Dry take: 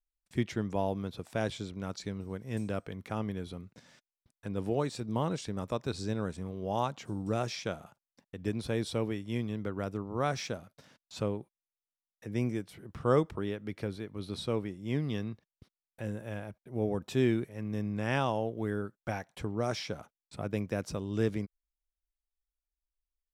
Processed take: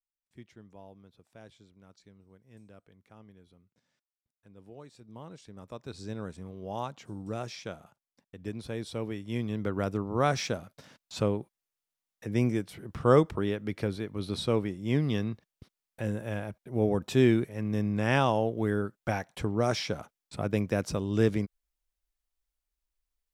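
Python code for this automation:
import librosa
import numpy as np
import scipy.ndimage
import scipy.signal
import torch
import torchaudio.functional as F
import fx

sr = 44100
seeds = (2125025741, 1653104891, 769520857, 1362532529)

y = fx.gain(x, sr, db=fx.line((4.58, -19.0), (5.47, -12.5), (6.14, -4.0), (8.87, -4.0), (9.73, 5.0)))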